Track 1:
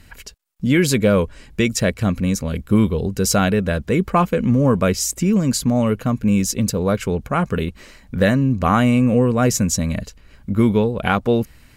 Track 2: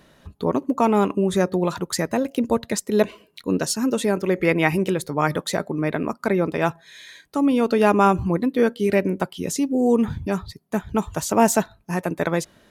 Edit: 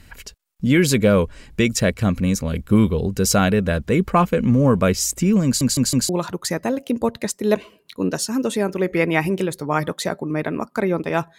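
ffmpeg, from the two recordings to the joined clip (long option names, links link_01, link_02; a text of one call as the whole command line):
ffmpeg -i cue0.wav -i cue1.wav -filter_complex "[0:a]apad=whole_dur=11.38,atrim=end=11.38,asplit=4[link_01][link_02][link_03][link_04];[link_01]atrim=end=5.612[link_05];[link_02]atrim=start=5.448:end=5.612[link_06];[link_03]atrim=start=5.448:end=5.612[link_07];[link_04]atrim=start=5.448:end=5.612[link_08];[1:a]atrim=start=1.568:end=6.86[link_09];[link_05][link_06]acrossfade=duration=0.004:curve1=hsin:curve2=hsin[link_10];[link_10][link_07]acrossfade=duration=0.004:curve1=hsin:curve2=hsin[link_11];[link_11][link_08]acrossfade=duration=0.004:curve1=hsin:curve2=hsin[link_12];[link_12][link_09]acrossfade=duration=0.004:curve1=hsin:curve2=hsin" out.wav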